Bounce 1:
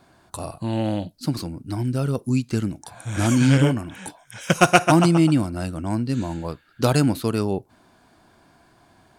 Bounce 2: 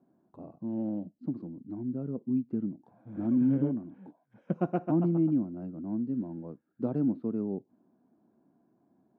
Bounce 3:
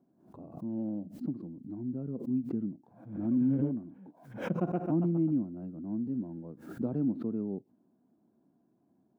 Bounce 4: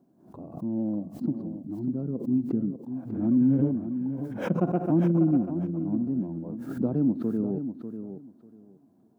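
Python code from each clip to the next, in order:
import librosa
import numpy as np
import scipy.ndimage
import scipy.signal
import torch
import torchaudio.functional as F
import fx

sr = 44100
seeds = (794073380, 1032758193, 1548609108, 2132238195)

y1 = fx.ladder_bandpass(x, sr, hz=270.0, resonance_pct=40)
y1 = y1 * librosa.db_to_amplitude(1.5)
y2 = fx.low_shelf(y1, sr, hz=490.0, db=5.5)
y2 = fx.pre_swell(y2, sr, db_per_s=100.0)
y2 = y2 * librosa.db_to_amplitude(-6.5)
y3 = fx.peak_eq(y2, sr, hz=2300.0, db=-3.0, octaves=1.5)
y3 = fx.echo_feedback(y3, sr, ms=594, feedback_pct=18, wet_db=-9.5)
y3 = y3 * librosa.db_to_amplitude(6.0)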